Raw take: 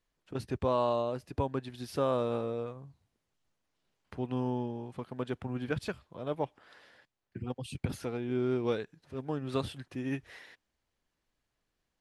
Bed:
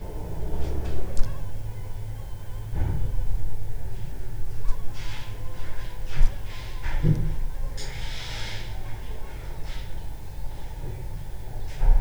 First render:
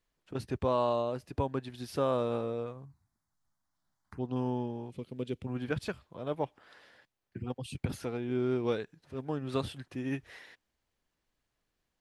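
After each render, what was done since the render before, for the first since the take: 2.85–4.36 s: touch-sensitive phaser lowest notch 450 Hz, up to 2.4 kHz, full sweep at -31.5 dBFS; 4.90–5.47 s: high-order bell 1.1 kHz -14 dB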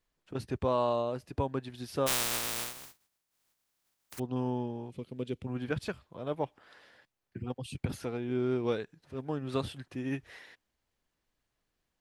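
2.06–4.18 s: spectral contrast reduction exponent 0.11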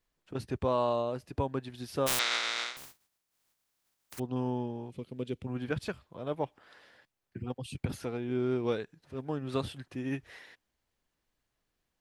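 2.19–2.77 s: cabinet simulation 410–6200 Hz, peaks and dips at 1.4 kHz +8 dB, 2.1 kHz +10 dB, 3.7 kHz +9 dB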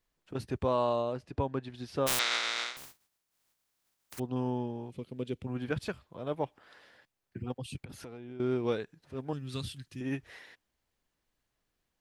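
1.13–2.07 s: distance through air 63 m; 7.82–8.40 s: compression 4:1, threshold -43 dBFS; 9.33–10.01 s: FFT filter 150 Hz 0 dB, 680 Hz -16 dB, 4.6 kHz +4 dB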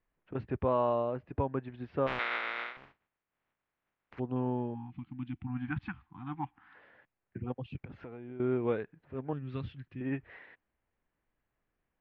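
4.74–6.75 s: spectral selection erased 340–720 Hz; low-pass 2.4 kHz 24 dB/octave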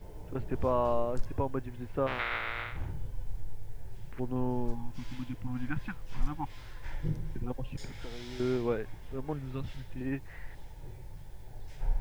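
add bed -12 dB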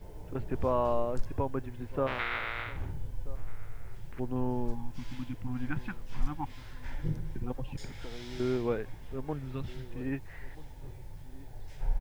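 echo from a far wall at 220 m, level -19 dB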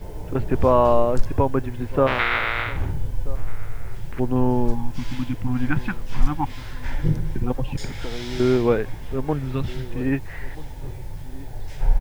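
trim +12 dB

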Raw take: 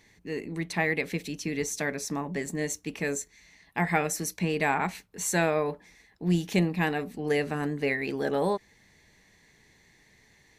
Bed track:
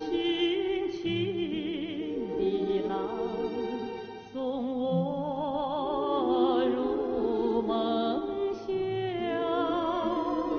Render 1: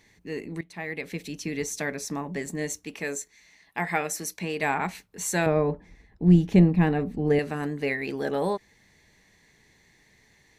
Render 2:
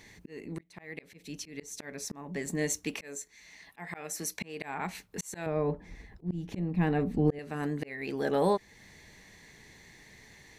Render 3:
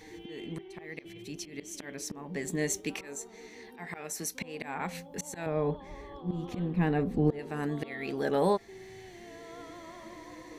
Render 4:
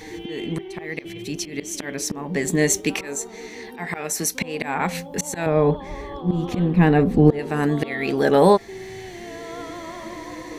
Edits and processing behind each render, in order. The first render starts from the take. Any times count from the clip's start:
0.61–1.37 s: fade in, from -17.5 dB; 2.86–4.63 s: bass shelf 210 Hz -9.5 dB; 5.46–7.39 s: tilt EQ -3.5 dB/octave
slow attack 674 ms; in parallel at 0 dB: compression, threshold -40 dBFS, peak gain reduction 17.5 dB
add bed track -18.5 dB
trim +12 dB

